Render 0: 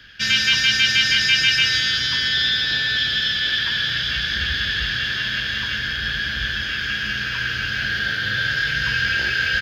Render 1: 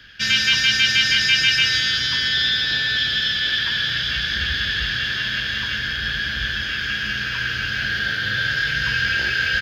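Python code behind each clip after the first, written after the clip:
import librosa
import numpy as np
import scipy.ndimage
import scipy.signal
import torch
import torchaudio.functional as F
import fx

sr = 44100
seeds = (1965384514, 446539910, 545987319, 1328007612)

y = x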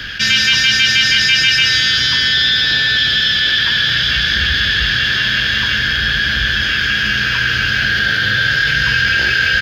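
y = fx.env_flatten(x, sr, amount_pct=50)
y = y * 10.0 ** (3.5 / 20.0)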